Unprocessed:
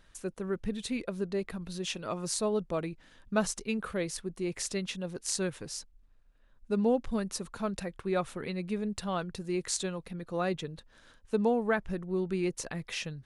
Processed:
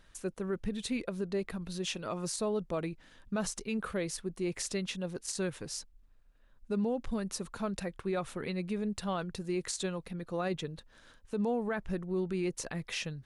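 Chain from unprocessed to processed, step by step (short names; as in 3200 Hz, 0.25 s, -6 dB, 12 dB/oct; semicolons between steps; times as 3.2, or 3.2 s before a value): limiter -25 dBFS, peak gain reduction 11 dB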